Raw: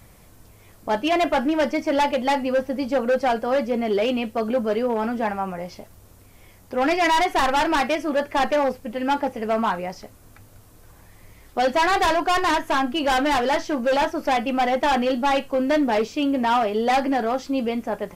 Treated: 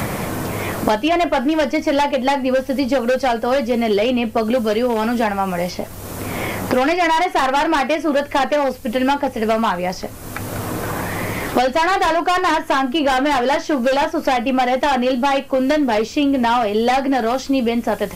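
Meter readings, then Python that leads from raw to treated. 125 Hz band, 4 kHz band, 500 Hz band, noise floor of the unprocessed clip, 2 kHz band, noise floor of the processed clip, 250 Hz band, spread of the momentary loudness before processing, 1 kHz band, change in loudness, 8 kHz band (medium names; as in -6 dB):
+11.5 dB, +4.0 dB, +4.5 dB, -50 dBFS, +4.0 dB, -34 dBFS, +5.5 dB, 6 LU, +3.5 dB, +4.0 dB, +6.0 dB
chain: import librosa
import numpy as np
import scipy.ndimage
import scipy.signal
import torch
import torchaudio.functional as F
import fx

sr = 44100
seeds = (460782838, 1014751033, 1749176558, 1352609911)

y = fx.band_squash(x, sr, depth_pct=100)
y = y * librosa.db_to_amplitude(3.5)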